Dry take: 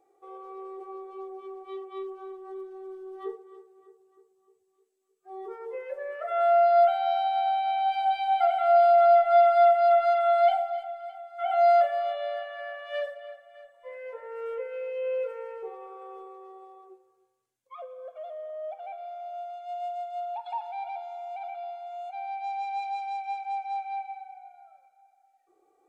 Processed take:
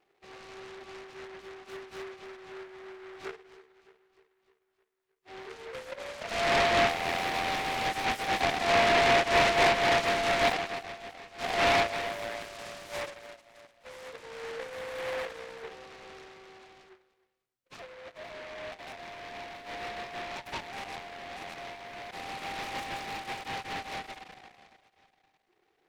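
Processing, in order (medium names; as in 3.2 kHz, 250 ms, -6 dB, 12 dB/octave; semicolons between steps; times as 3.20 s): delay time shaken by noise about 1.3 kHz, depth 0.2 ms; trim -5 dB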